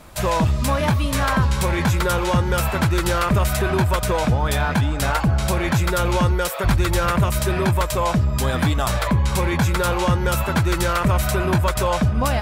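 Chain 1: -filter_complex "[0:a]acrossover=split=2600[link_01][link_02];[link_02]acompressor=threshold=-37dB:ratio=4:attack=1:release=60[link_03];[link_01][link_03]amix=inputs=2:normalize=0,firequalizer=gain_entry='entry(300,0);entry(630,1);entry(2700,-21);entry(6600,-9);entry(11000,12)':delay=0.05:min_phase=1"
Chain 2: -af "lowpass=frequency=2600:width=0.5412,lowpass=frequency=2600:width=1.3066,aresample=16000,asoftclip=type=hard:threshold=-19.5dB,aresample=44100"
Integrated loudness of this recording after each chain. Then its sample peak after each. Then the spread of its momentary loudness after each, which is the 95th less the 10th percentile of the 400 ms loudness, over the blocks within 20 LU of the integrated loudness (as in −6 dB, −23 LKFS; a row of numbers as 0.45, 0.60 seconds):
−21.0, −23.5 LKFS; −9.5, −18.0 dBFS; 1, 1 LU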